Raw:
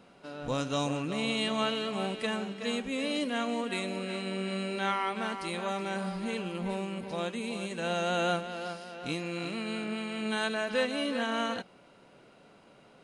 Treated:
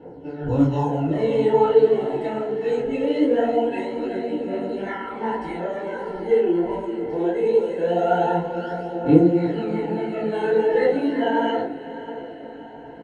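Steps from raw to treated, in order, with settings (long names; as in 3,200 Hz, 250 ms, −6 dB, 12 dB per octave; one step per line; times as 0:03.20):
low-shelf EQ 380 Hz −10 dB
comb filter 2.3 ms, depth 39%
in parallel at −3 dB: brickwall limiter −27 dBFS, peak gain reduction 9.5 dB
on the sum: phase shifter 0.22 Hz, delay 3.2 ms, feedback 57%
moving average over 36 samples
on a send: feedback delay with all-pass diffusion 644 ms, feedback 54%, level −14 dB
on the sum: feedback delay network reverb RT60 0.48 s, low-frequency decay 1.5×, high-frequency decay 0.4×, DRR −7.5 dB
micro pitch shift up and down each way 51 cents
level +8.5 dB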